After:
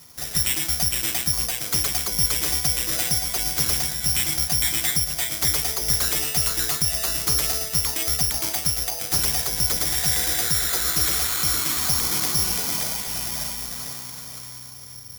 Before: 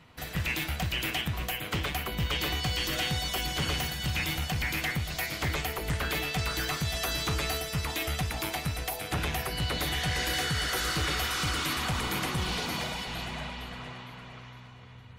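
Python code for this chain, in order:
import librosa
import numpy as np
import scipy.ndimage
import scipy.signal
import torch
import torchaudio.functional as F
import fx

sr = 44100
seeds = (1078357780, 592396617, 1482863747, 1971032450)

y = (np.kron(scipy.signal.resample_poly(x, 1, 8), np.eye(8)[0]) * 8)[:len(x)]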